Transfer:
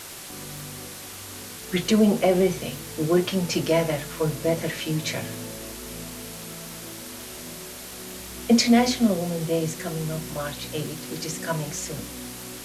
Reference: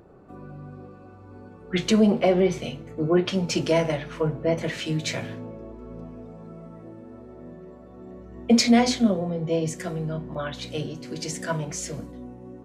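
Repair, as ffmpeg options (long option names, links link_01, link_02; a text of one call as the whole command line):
ffmpeg -i in.wav -af "adeclick=threshold=4,afwtdn=0.013" out.wav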